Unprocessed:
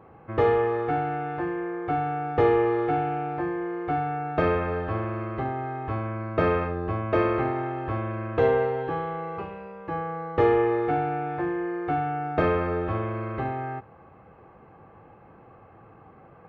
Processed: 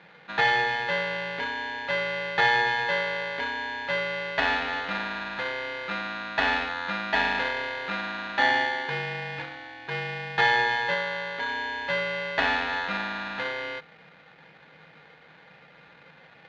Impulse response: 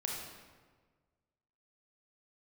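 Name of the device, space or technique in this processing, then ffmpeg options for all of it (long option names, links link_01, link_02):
ring modulator pedal into a guitar cabinet: -filter_complex "[0:a]asettb=1/sr,asplit=3[link_01][link_02][link_03];[link_01]atrim=end=10.944[link_04];[link_02]atrim=start=10.94:end=11.49,asetpts=PTS-STARTPTS,afade=type=in:duration=0.004:curve=qsin,afade=type=out:start_time=0.546:duration=0.004:curve=qsin,equalizer=frequency=1200:width_type=o:width=1.4:gain=-4[link_05];[link_03]atrim=start=11.486[link_06];[link_04][link_05]acrossfade=duration=0.004:curve1=hsin:curve2=qsin[link_07];[link_07][link_06]acrossfade=duration=0.004:curve1=qsin:curve2=hsin,aeval=exprs='val(0)*sgn(sin(2*PI*1300*n/s))':channel_layout=same,highpass=93,equalizer=frequency=110:width_type=q:width=4:gain=-9,equalizer=frequency=160:width_type=q:width=4:gain=9,equalizer=frequency=1100:width_type=q:width=4:gain=-8,lowpass=frequency=3500:width=0.5412,lowpass=frequency=3500:width=1.3066"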